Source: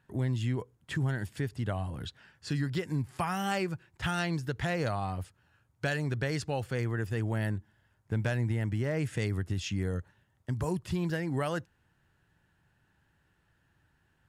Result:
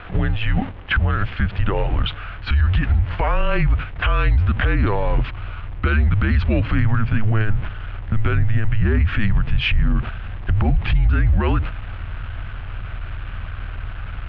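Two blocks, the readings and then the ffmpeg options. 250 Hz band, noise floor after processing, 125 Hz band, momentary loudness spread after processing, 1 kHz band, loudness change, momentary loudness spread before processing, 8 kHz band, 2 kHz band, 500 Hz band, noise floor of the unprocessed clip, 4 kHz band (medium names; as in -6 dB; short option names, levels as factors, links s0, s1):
+8.5 dB, -32 dBFS, +13.0 dB, 14 LU, +10.0 dB, +12.5 dB, 7 LU, under -20 dB, +12.5 dB, +6.5 dB, -72 dBFS, +11.5 dB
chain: -af "aeval=exprs='val(0)+0.5*0.00708*sgn(val(0))':c=same,agate=range=0.398:threshold=0.00891:ratio=16:detection=peak,aeval=exprs='val(0)+0.00355*(sin(2*PI*60*n/s)+sin(2*PI*2*60*n/s)/2+sin(2*PI*3*60*n/s)/3+sin(2*PI*4*60*n/s)/4+sin(2*PI*5*60*n/s)/5)':c=same,acompressor=threshold=0.0316:ratio=6,asubboost=boost=7:cutoff=230,highpass=f=190:t=q:w=0.5412,highpass=f=190:t=q:w=1.307,lowpass=f=3300:t=q:w=0.5176,lowpass=f=3300:t=q:w=0.7071,lowpass=f=3300:t=q:w=1.932,afreqshift=-220,alimiter=level_in=31.6:limit=0.891:release=50:level=0:latency=1,volume=0.355"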